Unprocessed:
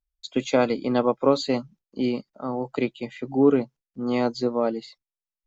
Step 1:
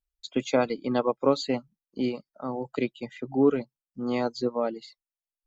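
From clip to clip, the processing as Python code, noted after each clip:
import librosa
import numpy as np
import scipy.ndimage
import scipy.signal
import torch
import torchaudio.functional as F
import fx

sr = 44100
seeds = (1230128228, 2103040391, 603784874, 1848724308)

y = fx.dereverb_blind(x, sr, rt60_s=0.84)
y = y * 10.0 ** (-2.5 / 20.0)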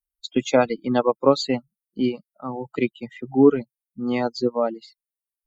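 y = fx.bin_expand(x, sr, power=1.5)
y = y * 10.0 ** (7.5 / 20.0)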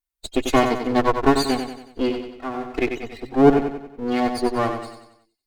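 y = fx.lower_of_two(x, sr, delay_ms=2.8)
y = fx.echo_feedback(y, sr, ms=93, feedback_pct=47, wet_db=-7.0)
y = y * 10.0 ** (2.0 / 20.0)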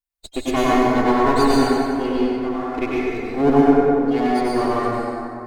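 y = fx.rev_plate(x, sr, seeds[0], rt60_s=2.8, hf_ratio=0.4, predelay_ms=85, drr_db=-6.5)
y = y * 10.0 ** (-5.0 / 20.0)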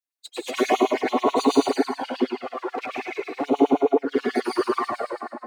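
y = fx.env_flanger(x, sr, rest_ms=6.8, full_db=-12.5)
y = fx.filter_lfo_highpass(y, sr, shape='sine', hz=9.3, low_hz=300.0, high_hz=4700.0, q=1.7)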